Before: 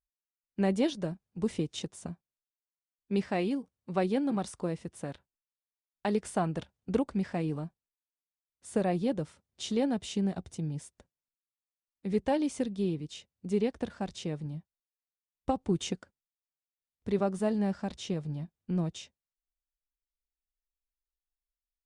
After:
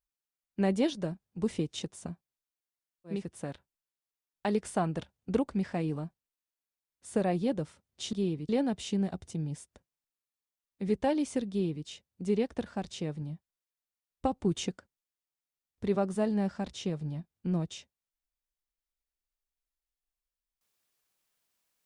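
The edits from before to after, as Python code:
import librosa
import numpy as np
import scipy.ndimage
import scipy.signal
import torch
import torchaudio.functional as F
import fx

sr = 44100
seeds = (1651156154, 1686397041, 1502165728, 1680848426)

y = fx.edit(x, sr, fx.cut(start_s=3.16, length_s=1.6, crossfade_s=0.24),
    fx.duplicate(start_s=12.74, length_s=0.36, to_s=9.73), tone=tone)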